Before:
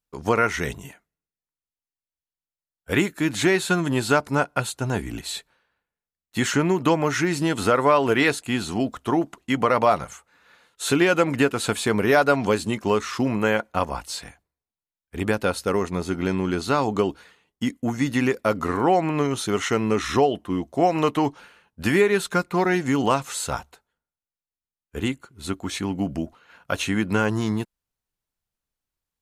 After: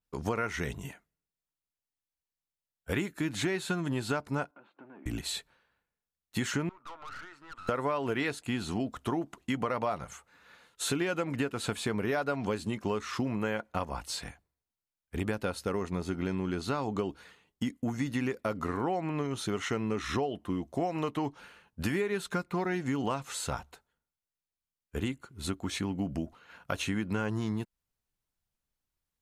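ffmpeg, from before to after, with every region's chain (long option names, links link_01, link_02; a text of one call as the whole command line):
ffmpeg -i in.wav -filter_complex "[0:a]asettb=1/sr,asplit=3[link_01][link_02][link_03];[link_01]atrim=end=4.514[link_04];[link_02]atrim=start=4.51:end=5.06,asetpts=PTS-STARTPTS,afade=type=in:duration=0.004:curve=qsin,afade=type=out:start_time=0.546:duration=0.004:curve=qsin,acompressor=threshold=-38dB:ratio=8:attack=3.2:release=140:knee=1:detection=peak,asoftclip=type=hard:threshold=-40dB,highpass=frequency=260:width=0.5412,highpass=frequency=260:width=1.3066,equalizer=frequency=290:width_type=q:width=4:gain=5,equalizer=frequency=450:width_type=q:width=4:gain=-7,equalizer=frequency=730:width_type=q:width=4:gain=-4,equalizer=frequency=1300:width_type=q:width=4:gain=-3,equalizer=frequency=1900:width_type=q:width=4:gain=-8,lowpass=frequency=2000:width=0.5412,lowpass=frequency=2000:width=1.3066[link_05];[link_03]atrim=start=5.056[link_06];[link_04][link_05]acrossfade=duration=0.004:curve1=hsin:curve2=qsin[link_07];[link_07][link_06]acrossfade=duration=0.004:curve1=qsin:curve2=hsin,asettb=1/sr,asplit=3[link_08][link_09][link_10];[link_08]atrim=end=6.694[link_11];[link_09]atrim=start=6.69:end=7.69,asetpts=PTS-STARTPTS,afade=type=in:duration=0.004:curve=qsin,afade=type=out:start_time=0.996:duration=0.004:curve=qsin,bandpass=frequency=1300:width_type=q:width=7.1,aeval=exprs='(tanh(89.1*val(0)+0.5)-tanh(0.5))/89.1':channel_layout=same[link_12];[link_10]atrim=start=7.686[link_13];[link_11][link_12]acrossfade=duration=0.004:curve1=hsin:curve2=qsin[link_14];[link_14][link_13]acrossfade=duration=0.004:curve1=qsin:curve2=hsin,bass=frequency=250:gain=3,treble=frequency=4000:gain=0,acompressor=threshold=-29dB:ratio=3,adynamicequalizer=threshold=0.00355:dfrequency=5100:dqfactor=0.7:tfrequency=5100:tqfactor=0.7:attack=5:release=100:ratio=0.375:range=2:mode=cutabove:tftype=highshelf,volume=-2dB" out.wav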